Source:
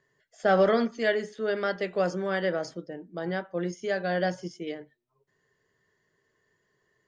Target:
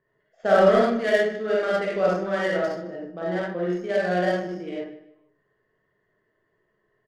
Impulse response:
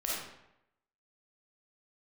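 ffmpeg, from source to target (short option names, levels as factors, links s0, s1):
-filter_complex "[0:a]aecho=1:1:152|304|456:0.224|0.0694|0.0215[s0];[1:a]atrim=start_sample=2205,afade=t=out:st=0.19:d=0.01,atrim=end_sample=8820[s1];[s0][s1]afir=irnorm=-1:irlink=0,adynamicsmooth=sensitivity=3.5:basefreq=2100"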